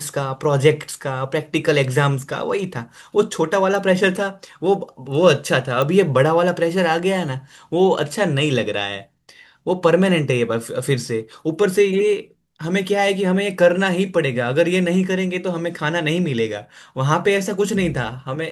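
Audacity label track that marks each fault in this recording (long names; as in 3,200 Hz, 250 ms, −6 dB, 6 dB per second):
5.820000	5.820000	click −9 dBFS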